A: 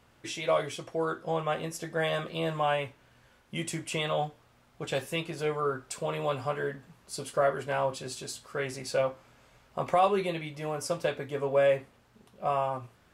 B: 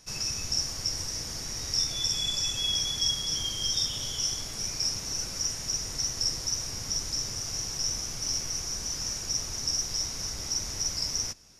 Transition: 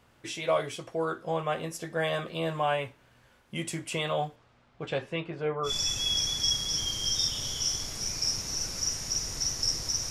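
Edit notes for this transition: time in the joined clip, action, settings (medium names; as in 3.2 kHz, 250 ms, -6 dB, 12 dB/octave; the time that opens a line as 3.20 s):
A
4.35–5.73 s: low-pass 6.9 kHz -> 1.5 kHz
5.68 s: go over to B from 2.26 s, crossfade 0.10 s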